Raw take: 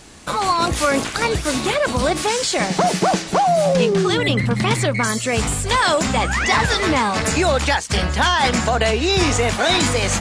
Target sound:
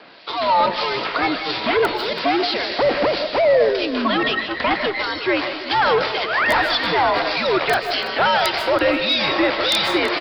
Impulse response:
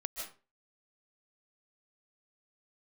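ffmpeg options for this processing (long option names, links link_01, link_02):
-filter_complex "[0:a]highpass=frequency=460:width=0.5412,highpass=frequency=460:width=1.3066,aresample=11025,volume=17.5dB,asoftclip=hard,volume=-17.5dB,aresample=44100,afreqshift=-140,aeval=exprs='(mod(3.55*val(0)+1,2)-1)/3.55':channel_layout=same,acrossover=split=2500[link_01][link_02];[link_01]aeval=exprs='val(0)*(1-0.7/2+0.7/2*cos(2*PI*1.7*n/s))':channel_layout=same[link_03];[link_02]aeval=exprs='val(0)*(1-0.7/2-0.7/2*cos(2*PI*1.7*n/s))':channel_layout=same[link_04];[link_03][link_04]amix=inputs=2:normalize=0,aecho=1:1:332|664|996|1328:0.158|0.065|0.0266|0.0109,asplit=2[link_05][link_06];[1:a]atrim=start_sample=2205[link_07];[link_06][link_07]afir=irnorm=-1:irlink=0,volume=-1.5dB[link_08];[link_05][link_08]amix=inputs=2:normalize=0,volume=1dB"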